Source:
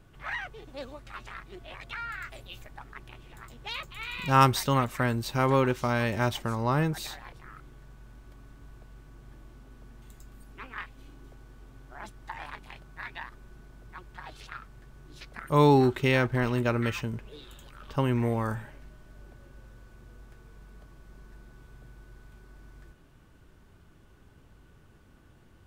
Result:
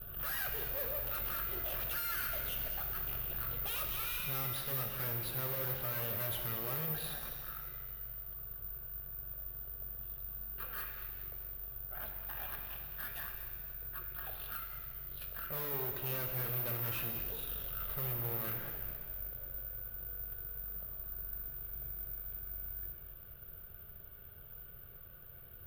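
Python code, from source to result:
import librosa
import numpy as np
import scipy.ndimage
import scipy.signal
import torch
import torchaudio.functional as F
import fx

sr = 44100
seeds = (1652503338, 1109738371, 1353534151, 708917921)

p1 = scipy.signal.sosfilt(scipy.signal.butter(2, 3600.0, 'lowpass', fs=sr, output='sos'), x)
p2 = fx.rider(p1, sr, range_db=10, speed_s=0.5)
p3 = fx.fixed_phaser(p2, sr, hz=1400.0, stages=8)
p4 = fx.tube_stage(p3, sr, drive_db=43.0, bias=0.55)
p5 = p4 + fx.echo_feedback(p4, sr, ms=213, feedback_pct=48, wet_db=-12.5, dry=0)
p6 = (np.kron(scipy.signal.resample_poly(p5, 1, 3), np.eye(3)[0]) * 3)[:len(p5)]
p7 = fx.rev_shimmer(p6, sr, seeds[0], rt60_s=1.5, semitones=7, shimmer_db=-8, drr_db=4.0)
y = p7 * librosa.db_to_amplitude(1.0)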